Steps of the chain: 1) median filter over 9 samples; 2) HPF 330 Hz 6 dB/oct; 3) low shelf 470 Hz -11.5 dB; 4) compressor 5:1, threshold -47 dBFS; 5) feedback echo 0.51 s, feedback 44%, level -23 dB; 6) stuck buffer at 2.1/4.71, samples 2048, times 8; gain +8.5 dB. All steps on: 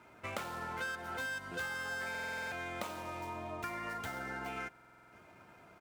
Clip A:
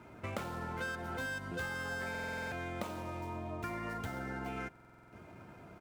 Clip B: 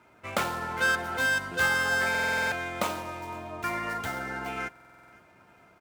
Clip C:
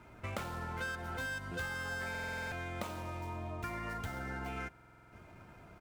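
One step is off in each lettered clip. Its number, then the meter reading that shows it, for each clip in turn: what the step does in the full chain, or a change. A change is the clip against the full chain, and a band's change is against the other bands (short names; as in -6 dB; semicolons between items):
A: 3, 125 Hz band +8.5 dB; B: 4, mean gain reduction 7.0 dB; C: 2, 125 Hz band +9.5 dB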